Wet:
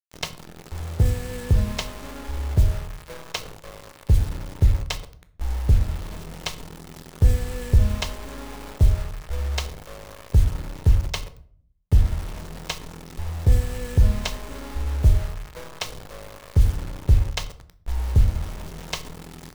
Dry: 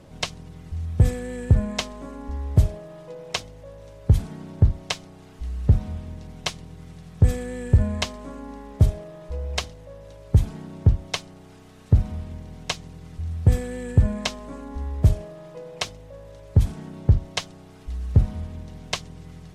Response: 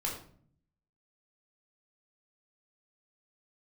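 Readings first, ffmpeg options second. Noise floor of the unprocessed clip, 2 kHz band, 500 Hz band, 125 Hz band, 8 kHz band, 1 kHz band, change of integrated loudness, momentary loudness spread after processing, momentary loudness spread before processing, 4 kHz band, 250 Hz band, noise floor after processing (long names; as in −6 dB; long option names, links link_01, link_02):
−46 dBFS, −0.5 dB, −2.0 dB, −0.5 dB, −0.5 dB, 0.0 dB, 0.0 dB, 18 LU, 19 LU, −1.5 dB, −4.0 dB, −50 dBFS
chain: -filter_complex "[0:a]asubboost=boost=4:cutoff=52,acrusher=bits=5:mix=0:aa=0.000001,asplit=2[link_01][link_02];[1:a]atrim=start_sample=2205[link_03];[link_02][link_03]afir=irnorm=-1:irlink=0,volume=-9.5dB[link_04];[link_01][link_04]amix=inputs=2:normalize=0,volume=-4.5dB"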